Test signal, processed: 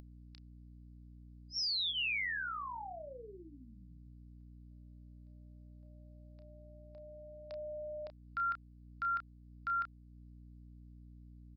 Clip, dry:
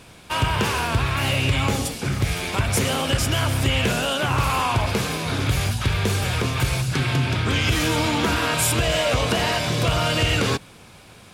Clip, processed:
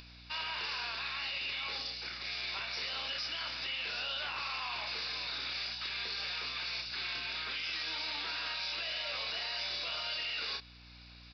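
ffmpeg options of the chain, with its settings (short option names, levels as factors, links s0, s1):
-filter_complex "[0:a]highpass=160,aderivative,bandreject=f=3200:w=8,asplit=2[s0][s1];[s1]adelay=31,volume=0.447[s2];[s0][s2]amix=inputs=2:normalize=0,aresample=11025,aresample=44100,bass=f=250:g=-8,treble=f=4000:g=4,aeval=exprs='val(0)+0.00158*(sin(2*PI*60*n/s)+sin(2*PI*2*60*n/s)/2+sin(2*PI*3*60*n/s)/3+sin(2*PI*4*60*n/s)/4+sin(2*PI*5*60*n/s)/5)':c=same,acompressor=mode=upward:threshold=0.00355:ratio=2.5,alimiter=level_in=1.78:limit=0.0631:level=0:latency=1:release=11,volume=0.562"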